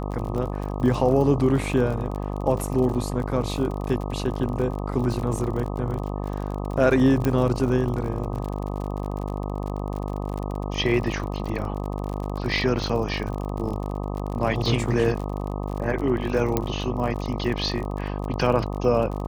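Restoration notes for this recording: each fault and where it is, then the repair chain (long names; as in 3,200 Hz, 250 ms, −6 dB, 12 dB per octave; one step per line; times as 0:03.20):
mains buzz 50 Hz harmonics 25 −29 dBFS
surface crackle 48 per second −30 dBFS
0:07.25: click −12 dBFS
0:16.57: click −8 dBFS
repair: click removal
hum removal 50 Hz, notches 25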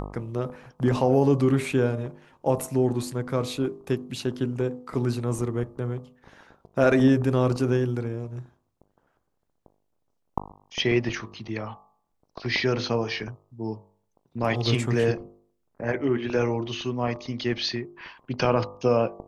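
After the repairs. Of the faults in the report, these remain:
none of them is left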